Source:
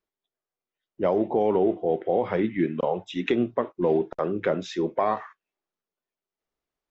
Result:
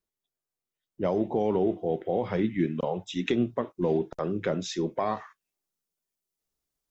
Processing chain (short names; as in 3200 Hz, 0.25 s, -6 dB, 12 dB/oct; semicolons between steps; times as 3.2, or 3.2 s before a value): tone controls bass +8 dB, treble +8 dB, from 1.04 s treble +14 dB; gain -5 dB